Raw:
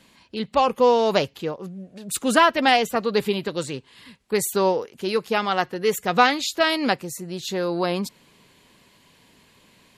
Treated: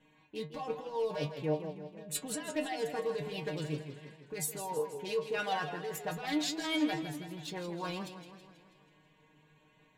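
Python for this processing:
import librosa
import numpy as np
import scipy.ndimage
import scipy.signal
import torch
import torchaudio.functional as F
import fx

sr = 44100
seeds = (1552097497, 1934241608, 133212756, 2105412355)

y = fx.wiener(x, sr, points=9)
y = fx.notch(y, sr, hz=1300.0, q=6.4)
y = fx.over_compress(y, sr, threshold_db=-24.0, ratio=-1.0)
y = fx.stiff_resonator(y, sr, f0_hz=150.0, decay_s=0.24, stiffness=0.002)
y = fx.echo_warbled(y, sr, ms=162, feedback_pct=56, rate_hz=2.8, cents=136, wet_db=-10)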